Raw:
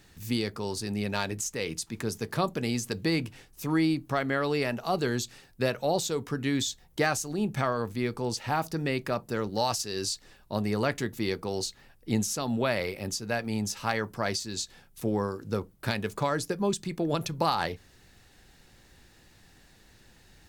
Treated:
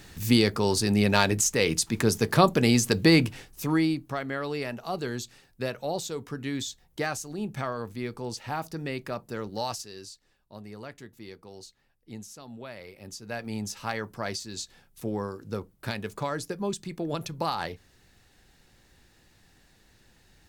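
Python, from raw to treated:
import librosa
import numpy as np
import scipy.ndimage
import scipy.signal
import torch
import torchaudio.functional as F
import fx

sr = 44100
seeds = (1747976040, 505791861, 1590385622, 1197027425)

y = fx.gain(x, sr, db=fx.line((3.24, 8.5), (4.18, -4.0), (9.7, -4.0), (10.12, -14.5), (12.8, -14.5), (13.47, -3.0)))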